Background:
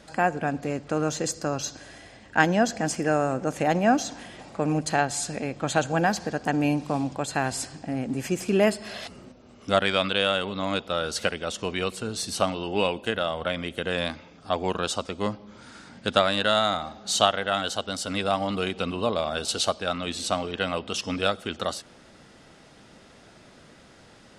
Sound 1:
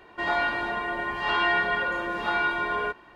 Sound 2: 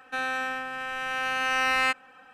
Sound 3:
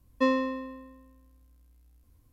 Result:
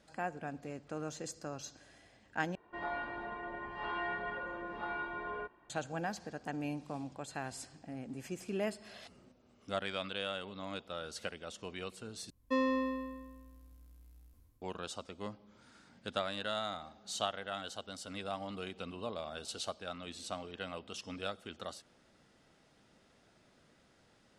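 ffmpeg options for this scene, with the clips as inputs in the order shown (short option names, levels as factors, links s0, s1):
-filter_complex "[0:a]volume=0.178[s0];[1:a]lowpass=f=1100:p=1[s1];[3:a]dynaudnorm=f=120:g=7:m=4.22[s2];[s0]asplit=3[s3][s4][s5];[s3]atrim=end=2.554[s6];[s1]atrim=end=3.15,asetpts=PTS-STARTPTS,volume=0.299[s7];[s4]atrim=start=5.696:end=12.304[s8];[s2]atrim=end=2.32,asetpts=PTS-STARTPTS,volume=0.299[s9];[s5]atrim=start=14.616[s10];[s6][s7]acrossfade=d=0.004:c1=hsin:c2=hsin[s11];[s11][s8]acrossfade=d=0.004:c1=hsin:c2=hsin[s12];[s12][s9]acrossfade=d=0.004:c1=hsin:c2=hsin[s13];[s13][s10]acrossfade=d=0.004:c1=hsin:c2=hsin"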